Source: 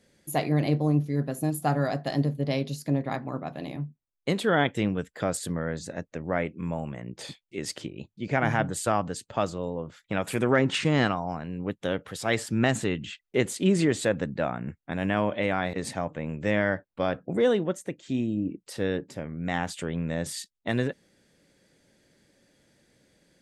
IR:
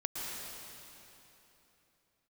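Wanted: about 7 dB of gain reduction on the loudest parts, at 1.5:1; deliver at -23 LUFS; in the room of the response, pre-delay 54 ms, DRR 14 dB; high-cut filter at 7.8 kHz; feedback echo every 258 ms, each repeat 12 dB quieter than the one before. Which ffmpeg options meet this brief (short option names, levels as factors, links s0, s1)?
-filter_complex "[0:a]lowpass=7800,acompressor=threshold=0.0126:ratio=1.5,aecho=1:1:258|516|774:0.251|0.0628|0.0157,asplit=2[s0][s1];[1:a]atrim=start_sample=2205,adelay=54[s2];[s1][s2]afir=irnorm=-1:irlink=0,volume=0.133[s3];[s0][s3]amix=inputs=2:normalize=0,volume=3.55"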